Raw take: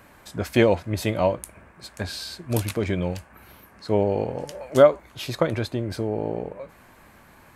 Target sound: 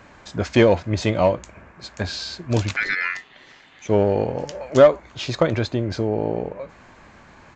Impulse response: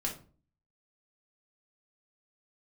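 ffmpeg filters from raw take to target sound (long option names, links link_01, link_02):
-filter_complex "[0:a]asplit=2[link_01][link_02];[link_02]volume=15.5dB,asoftclip=hard,volume=-15.5dB,volume=-4.5dB[link_03];[link_01][link_03]amix=inputs=2:normalize=0,asettb=1/sr,asplit=3[link_04][link_05][link_06];[link_04]atrim=end=2.764[link_07];[link_05]atrim=start=2.76:end=3.89,asetpts=PTS-STARTPTS,afade=type=in:duration=0.004:curve=qsin,afade=type=out:start_time=1.126:duration=0.004:curve=qsin,aeval=exprs='val(0)*sin(2*PI*1900*n/s)':channel_layout=same[link_08];[link_06]atrim=start=3.886[link_09];[link_07][link_08]acrossfade=duration=0.004:curve1=hsin:curve2=qsin[link_10];[link_10][link_09]acrossfade=duration=0.004:curve1=qsin:curve2=hsin,aresample=16000,aresample=44100"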